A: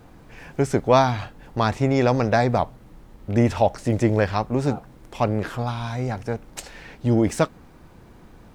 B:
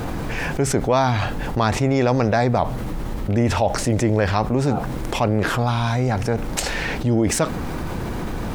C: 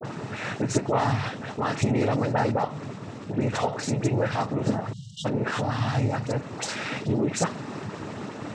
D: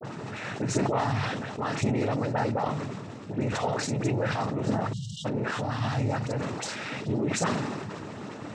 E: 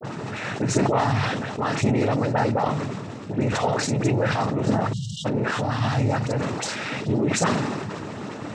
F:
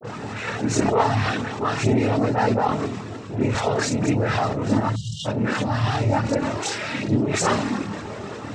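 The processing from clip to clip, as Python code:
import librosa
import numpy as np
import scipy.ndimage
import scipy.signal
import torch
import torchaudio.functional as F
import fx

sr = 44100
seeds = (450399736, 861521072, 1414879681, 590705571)

y1 = fx.env_flatten(x, sr, amount_pct=70)
y1 = y1 * librosa.db_to_amplitude(-3.0)
y2 = fx.noise_vocoder(y1, sr, seeds[0], bands=12)
y2 = fx.dispersion(y2, sr, late='highs', ms=47.0, hz=1800.0)
y2 = fx.spec_erase(y2, sr, start_s=4.93, length_s=0.32, low_hz=210.0, high_hz=2800.0)
y2 = y2 * librosa.db_to_amplitude(-5.5)
y3 = fx.sustainer(y2, sr, db_per_s=30.0)
y3 = y3 * librosa.db_to_amplitude(-4.0)
y4 = fx.attack_slew(y3, sr, db_per_s=370.0)
y4 = y4 * librosa.db_to_amplitude(5.5)
y5 = fx.chorus_voices(y4, sr, voices=6, hz=0.33, base_ms=27, depth_ms=2.5, mix_pct=65)
y5 = y5 * librosa.db_to_amplitude(4.0)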